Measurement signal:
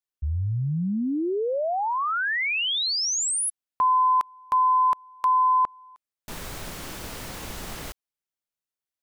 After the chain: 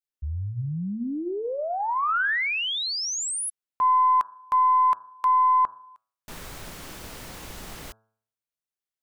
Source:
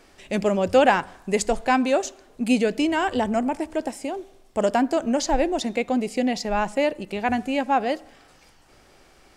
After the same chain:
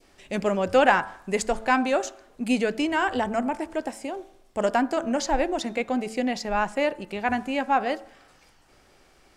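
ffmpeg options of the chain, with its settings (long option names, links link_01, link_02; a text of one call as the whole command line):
ffmpeg -i in.wav -af "adynamicequalizer=threshold=0.02:dfrequency=1400:dqfactor=0.97:tfrequency=1400:tqfactor=0.97:attack=5:release=100:ratio=0.375:range=3:mode=boostabove:tftype=bell,bandreject=frequency=110.3:width_type=h:width=4,bandreject=frequency=220.6:width_type=h:width=4,bandreject=frequency=330.9:width_type=h:width=4,bandreject=frequency=441.2:width_type=h:width=4,bandreject=frequency=551.5:width_type=h:width=4,bandreject=frequency=661.8:width_type=h:width=4,bandreject=frequency=772.1:width_type=h:width=4,bandreject=frequency=882.4:width_type=h:width=4,bandreject=frequency=992.7:width_type=h:width=4,bandreject=frequency=1103:width_type=h:width=4,bandreject=frequency=1213.3:width_type=h:width=4,bandreject=frequency=1323.6:width_type=h:width=4,bandreject=frequency=1433.9:width_type=h:width=4,bandreject=frequency=1544.2:width_type=h:width=4,bandreject=frequency=1654.5:width_type=h:width=4,aeval=exprs='0.794*(cos(1*acos(clip(val(0)/0.794,-1,1)))-cos(1*PI/2))+0.0178*(cos(3*acos(clip(val(0)/0.794,-1,1)))-cos(3*PI/2))+0.0141*(cos(4*acos(clip(val(0)/0.794,-1,1)))-cos(4*PI/2))':channel_layout=same,volume=-3dB" out.wav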